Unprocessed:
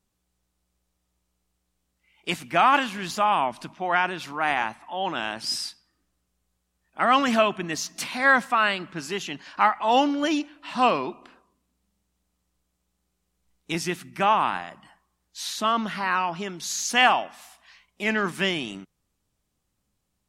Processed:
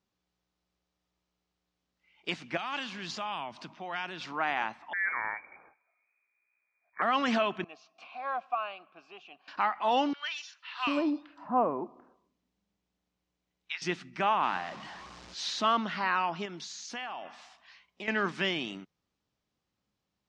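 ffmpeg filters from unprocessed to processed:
ffmpeg -i in.wav -filter_complex "[0:a]asettb=1/sr,asplit=3[link_01][link_02][link_03];[link_01]atrim=end=2.574[link_04];[link_02]atrim=start=2.57:end=4.21,asetpts=PTS-STARTPTS,afade=type=in:duration=0.004:curve=qsin,afade=type=out:start_time=1.636:duration=0.004:curve=qsin,acrossover=split=140|3000[link_05][link_06][link_07];[link_06]acompressor=threshold=-40dB:ratio=2:attack=3.2:release=140:knee=2.83:detection=peak[link_08];[link_05][link_08][link_07]amix=inputs=3:normalize=0[link_09];[link_03]atrim=start=4.206[link_10];[link_04][link_09]acrossfade=duration=0.004:curve1=hsin:curve2=qsin[link_11];[link_11][link_10]acrossfade=duration=0.004:curve1=qsin:curve2=hsin,asettb=1/sr,asplit=3[link_12][link_13][link_14];[link_12]atrim=end=4.934[link_15];[link_13]atrim=start=4.93:end=7.02,asetpts=PTS-STARTPTS,afade=type=in:duration=0.004:curve=qsin,afade=type=out:start_time=2.086:duration=0.004:curve=qsin,lowpass=frequency=2100:width_type=q:width=0.5098,lowpass=frequency=2100:width_type=q:width=0.6013,lowpass=frequency=2100:width_type=q:width=0.9,lowpass=frequency=2100:width_type=q:width=2.563,afreqshift=-2500[link_16];[link_14]atrim=start=7.016[link_17];[link_15][link_16]acrossfade=duration=0.004:curve1=hsin:curve2=qsin[link_18];[link_18][link_17]acrossfade=duration=0.004:curve1=qsin:curve2=hsin,asettb=1/sr,asplit=3[link_19][link_20][link_21];[link_19]atrim=end=7.644[link_22];[link_20]atrim=start=7.64:end=9.48,asetpts=PTS-STARTPTS,afade=type=in:duration=0.004:curve=qsin,afade=type=out:start_time=1.836:duration=0.004:curve=qsin,asplit=3[link_23][link_24][link_25];[link_23]bandpass=frequency=730:width_type=q:width=8,volume=0dB[link_26];[link_24]bandpass=frequency=1090:width_type=q:width=8,volume=-6dB[link_27];[link_25]bandpass=frequency=2440:width_type=q:width=8,volume=-9dB[link_28];[link_26][link_27][link_28]amix=inputs=3:normalize=0[link_29];[link_21]atrim=start=9.476[link_30];[link_22][link_29]acrossfade=duration=0.004:curve1=hsin:curve2=qsin[link_31];[link_31][link_30]acrossfade=duration=0.004:curve1=qsin:curve2=hsin,asettb=1/sr,asplit=3[link_32][link_33][link_34];[link_32]atrim=end=10.134[link_35];[link_33]atrim=start=10.13:end=13.82,asetpts=PTS-STARTPTS,afade=type=in:duration=0.004:curve=qsin,afade=type=out:start_time=3.686:duration=0.004:curve=qsin,acrossover=split=1200|4500[link_36][link_37][link_38];[link_38]adelay=120[link_39];[link_36]adelay=740[link_40];[link_40][link_37][link_39]amix=inputs=3:normalize=0,atrim=end_sample=162729[link_41];[link_34]atrim=start=13.816[link_42];[link_35][link_41]acrossfade=duration=0.004:curve1=hsin:curve2=qsin[link_43];[link_43][link_42]acrossfade=duration=0.004:curve1=qsin:curve2=hsin,asettb=1/sr,asplit=3[link_44][link_45][link_46];[link_44]atrim=end=14.434[link_47];[link_45]atrim=start=14.43:end=15.77,asetpts=PTS-STARTPTS,afade=type=in:duration=0.004:curve=qsin,afade=type=out:start_time=1.336:duration=0.004:curve=qsin,aeval=exprs='val(0)+0.5*0.0141*sgn(val(0))':channel_layout=same[link_48];[link_46]atrim=start=15.766[link_49];[link_47][link_48]acrossfade=duration=0.004:curve1=hsin:curve2=qsin[link_50];[link_50][link_49]acrossfade=duration=0.004:curve1=qsin:curve2=hsin,asettb=1/sr,asplit=3[link_51][link_52][link_53];[link_51]atrim=end=16.454[link_54];[link_52]atrim=start=16.45:end=18.08,asetpts=PTS-STARTPTS,afade=type=in:duration=0.004:curve=qsin,afade=type=out:start_time=1.626:duration=0.004:curve=qsin,acompressor=threshold=-33dB:ratio=6:attack=3.2:release=140:knee=1:detection=peak[link_55];[link_53]atrim=start=18.076[link_56];[link_54][link_55]acrossfade=duration=0.004:curve1=hsin:curve2=qsin[link_57];[link_57][link_56]acrossfade=duration=0.004:curve1=qsin:curve2=hsin,lowpass=frequency=5700:width=0.5412,lowpass=frequency=5700:width=1.3066,alimiter=limit=-13.5dB:level=0:latency=1:release=216,highpass=frequency=160:poles=1,volume=-3dB" out.wav

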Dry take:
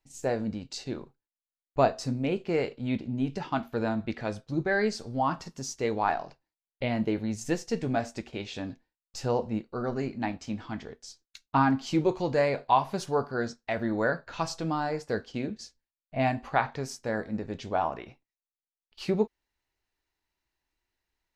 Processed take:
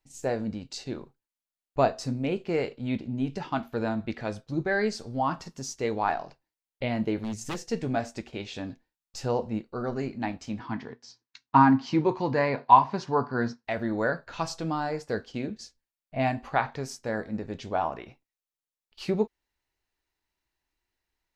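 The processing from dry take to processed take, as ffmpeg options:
ffmpeg -i in.wav -filter_complex "[0:a]asettb=1/sr,asplit=3[link_01][link_02][link_03];[link_01]atrim=end=7.214[link_04];[link_02]atrim=start=7.21:end=7.64,asetpts=PTS-STARTPTS,afade=type=in:duration=0.004:curve=qsin,afade=type=out:start_time=0.426:duration=0.004:curve=qsin,aeval=exprs='0.0473*(abs(mod(val(0)/0.0473+3,4)-2)-1)':channel_layout=same[link_05];[link_03]atrim=start=7.636[link_06];[link_04][link_05]acrossfade=duration=0.004:curve1=hsin:curve2=qsin[link_07];[link_07][link_06]acrossfade=duration=0.004:curve1=qsin:curve2=hsin,asettb=1/sr,asplit=3[link_08][link_09][link_10];[link_08]atrim=end=10.594[link_11];[link_09]atrim=start=10.59:end=13.65,asetpts=PTS-STARTPTS,afade=type=in:duration=0.004:curve=qsin,afade=type=out:start_time=3.056:duration=0.004:curve=qsin,highpass=120,equalizer=frequency=120:width_type=q:width=4:gain=9,equalizer=frequency=250:width_type=q:width=4:gain=7,equalizer=frequency=590:width_type=q:width=4:gain=-3,equalizer=frequency=980:width_type=q:width=4:gain=9,equalizer=frequency=1800:width_type=q:width=4:gain=4,equalizer=frequency=3400:width_type=q:width=4:gain=-4,lowpass=frequency=5500:width=0.5412,lowpass=frequency=5500:width=1.3066[link_12];[link_10]atrim=start=13.646[link_13];[link_11][link_12]acrossfade=duration=0.004:curve1=hsin:curve2=qsin[link_14];[link_14][link_13]acrossfade=duration=0.004:curve1=qsin:curve2=hsin" out.wav

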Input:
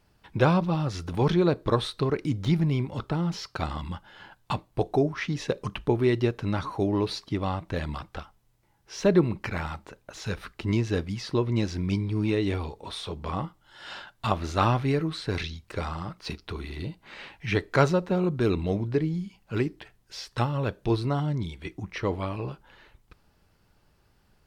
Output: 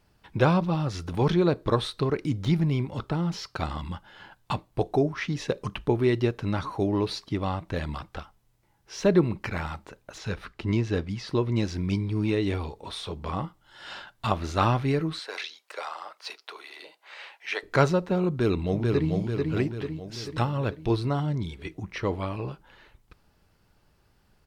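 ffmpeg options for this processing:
ffmpeg -i in.wav -filter_complex "[0:a]asettb=1/sr,asplit=3[link_01][link_02][link_03];[link_01]atrim=end=10.184[link_04];[link_02]atrim=start=10.18:end=11.28,asetpts=PTS-STARTPTS,afade=type=in:duration=0.004:curve=qsin,afade=type=out:start_time=1.096:duration=0.004:curve=qsin,highshelf=frequency=7700:gain=-10.5[link_05];[link_03]atrim=start=11.276[link_06];[link_04][link_05]acrossfade=duration=0.004:curve1=hsin:curve2=qsin[link_07];[link_07][link_06]acrossfade=duration=0.004:curve1=qsin:curve2=hsin,asettb=1/sr,asplit=3[link_08][link_09][link_10];[link_08]atrim=end=15.194[link_11];[link_09]atrim=start=15.19:end=17.63,asetpts=PTS-STARTPTS,afade=type=in:duration=0.004:curve=qsin,afade=type=out:start_time=2.436:duration=0.004:curve=qsin,highpass=frequency=530:width=0.5412,highpass=frequency=530:width=1.3066[link_12];[link_10]atrim=start=17.626[link_13];[link_11][link_12]acrossfade=duration=0.004:curve1=hsin:curve2=qsin[link_14];[link_14][link_13]acrossfade=duration=0.004:curve1=qsin:curve2=hsin,asplit=2[link_15][link_16];[link_16]afade=type=in:start_time=18.29:duration=0.01,afade=type=out:start_time=19.11:duration=0.01,aecho=0:1:440|880|1320|1760|2200|2640|3080|3520:0.707946|0.38937|0.214154|0.117784|0.0647815|0.0356298|0.0195964|0.010778[link_17];[link_15][link_17]amix=inputs=2:normalize=0" out.wav

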